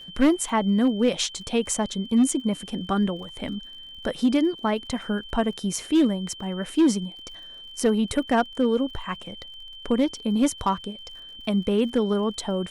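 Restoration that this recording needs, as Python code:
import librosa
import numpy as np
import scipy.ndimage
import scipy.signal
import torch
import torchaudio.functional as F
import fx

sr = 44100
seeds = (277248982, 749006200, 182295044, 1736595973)

y = fx.fix_declip(x, sr, threshold_db=-13.5)
y = fx.fix_declick_ar(y, sr, threshold=6.5)
y = fx.notch(y, sr, hz=3100.0, q=30.0)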